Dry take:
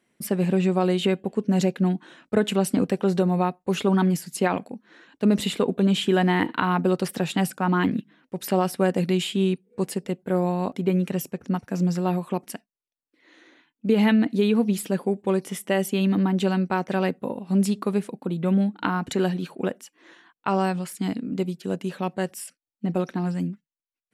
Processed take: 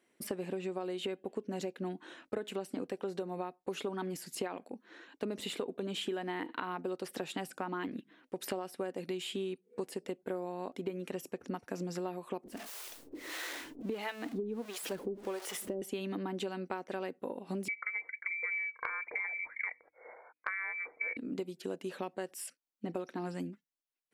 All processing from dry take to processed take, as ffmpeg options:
-filter_complex "[0:a]asettb=1/sr,asplit=3[s0][s1][s2];[s0]atrim=end=12.444[s3];[s1]atrim=start=12.44:end=15.82,asetpts=PTS-STARTPTS,afade=t=in:d=0.004:c=qsin,afade=t=out:st=3.376:d=0.004:c=qsin,aeval=exprs='val(0)+0.5*0.0316*sgn(val(0))':c=same,acrossover=split=480[s4][s5];[s4]aeval=exprs='val(0)*(1-1/2+1/2*cos(2*PI*1.5*n/s))':c=same[s6];[s5]aeval=exprs='val(0)*(1-1/2-1/2*cos(2*PI*1.5*n/s))':c=same[s7];[s6][s7]amix=inputs=2:normalize=0[s8];[s2]atrim=start=15.816[s9];[s3][s8]acrossfade=d=0.004:c1=hsin:c2=qsin[s10];[s10][s9]acrossfade=d=0.004:c1=qsin:c2=hsin,asettb=1/sr,asplit=3[s11][s12][s13];[s11]atrim=end=17.684[s14];[s12]atrim=start=17.68:end=21.17,asetpts=PTS-STARTPTS,afade=t=in:d=0.004:c=qsin,afade=t=out:st=3.486:d=0.004:c=qsin,lowpass=f=2100:t=q:w=0.5098,lowpass=f=2100:t=q:w=0.6013,lowpass=f=2100:t=q:w=0.9,lowpass=f=2100:t=q:w=2.563,afreqshift=-2500,equalizer=f=480:w=5.4:g=13,bandreject=f=50:t=h:w=6,bandreject=f=100:t=h:w=6,bandreject=f=150:t=h:w=6,bandreject=f=200:t=h:w=6,bandreject=f=250:t=h:w=6,bandreject=f=300:t=h:w=6[s15];[s13]atrim=start=21.166[s16];[s14][s15]acrossfade=d=0.004:c1=hsin:c2=qsin[s17];[s17][s16]acrossfade=d=0.004:c1=qsin:c2=hsin,deesser=0.6,lowshelf=f=240:t=q:w=1.5:g=-8,acompressor=threshold=0.0282:ratio=10,volume=0.708"

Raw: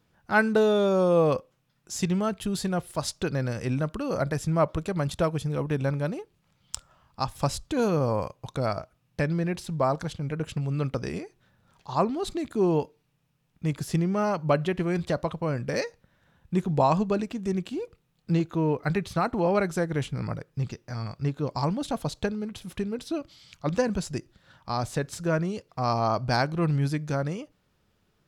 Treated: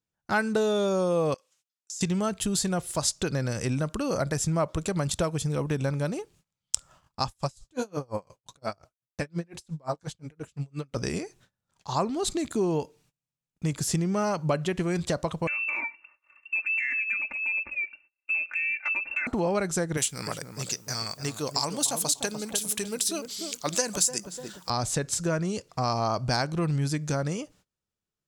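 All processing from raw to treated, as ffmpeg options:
-filter_complex "[0:a]asettb=1/sr,asplit=3[s0][s1][s2];[s0]atrim=end=1.344[s3];[s1]atrim=start=1.34:end=2.01,asetpts=PTS-STARTPTS,afade=t=in:d=0.004:c=qsin,afade=t=out:st=0.666:d=0.004:c=qsin,bandpass=f=6100:t=q:w=0.54,acompressor=threshold=0.00398:ratio=10:attack=3.2:release=140:knee=1:detection=peak[s4];[s2]atrim=start=2.006[s5];[s3][s4]acrossfade=d=0.004:c1=hsin:c2=qsin[s6];[s6][s5]acrossfade=d=0.004:c1=qsin:c2=hsin,asettb=1/sr,asplit=3[s7][s8][s9];[s7]atrim=end=7.284[s10];[s8]atrim=start=7.28:end=10.97,asetpts=PTS-STARTPTS,afade=t=in:d=0.004:c=qsin,afade=t=out:st=3.686:d=0.004:c=qsin,flanger=delay=2.3:depth=7.3:regen=-39:speed=1.3:shape=sinusoidal,aeval=exprs='val(0)*pow(10,-35*(0.5-0.5*cos(2*PI*5.7*n/s))/20)':c=same[s11];[s9]atrim=start=10.966[s12];[s10][s11]acrossfade=d=0.004:c1=hsin:c2=qsin[s13];[s13][s12]acrossfade=d=0.004:c1=qsin:c2=hsin,asettb=1/sr,asplit=3[s14][s15][s16];[s14]atrim=end=15.474[s17];[s15]atrim=start=15.47:end=19.27,asetpts=PTS-STARTPTS,afade=t=in:d=0.004:c=qsin,afade=t=out:st=3.796:d=0.004:c=qsin,lowpass=f=2400:t=q:w=0.5098,lowpass=f=2400:t=q:w=0.6013,lowpass=f=2400:t=q:w=0.9,lowpass=f=2400:t=q:w=2.563,afreqshift=-2800,acompressor=threshold=0.0141:ratio=2.5:attack=3.2:release=140:knee=1:detection=peak,aecho=1:1:3.4:0.86,atrim=end_sample=167580[s18];[s16]atrim=start=19.266[s19];[s17][s18]acrossfade=d=0.004:c1=hsin:c2=qsin[s20];[s20][s19]acrossfade=d=0.004:c1=qsin:c2=hsin,asettb=1/sr,asplit=3[s21][s22][s23];[s21]atrim=end=19.974[s24];[s22]atrim=start=19.97:end=24.7,asetpts=PTS-STARTPTS,afade=t=in:d=0.004:c=qsin,afade=t=out:st=4.726:d=0.004:c=qsin,aemphasis=mode=production:type=riaa,asplit=2[s25][s26];[s26]adelay=297,lowpass=f=870:p=1,volume=0.447,asplit=2[s27][s28];[s28]adelay=297,lowpass=f=870:p=1,volume=0.37,asplit=2[s29][s30];[s30]adelay=297,lowpass=f=870:p=1,volume=0.37,asplit=2[s31][s32];[s32]adelay=297,lowpass=f=870:p=1,volume=0.37[s33];[s25][s27][s29][s31][s33]amix=inputs=5:normalize=0,atrim=end_sample=208593[s34];[s23]atrim=start=24.696[s35];[s24][s34]acrossfade=d=0.004:c1=hsin:c2=qsin[s36];[s36][s35]acrossfade=d=0.004:c1=qsin:c2=hsin,agate=range=0.0501:threshold=0.00112:ratio=16:detection=peak,equalizer=f=7500:t=o:w=1.2:g=12,acompressor=threshold=0.0398:ratio=2.5,volume=1.41"

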